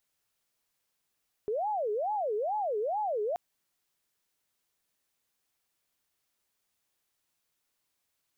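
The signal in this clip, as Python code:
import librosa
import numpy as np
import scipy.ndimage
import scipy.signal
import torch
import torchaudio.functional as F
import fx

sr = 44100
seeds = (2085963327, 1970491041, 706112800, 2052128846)

y = fx.siren(sr, length_s=1.88, kind='wail', low_hz=413.0, high_hz=856.0, per_s=2.3, wave='sine', level_db=-28.0)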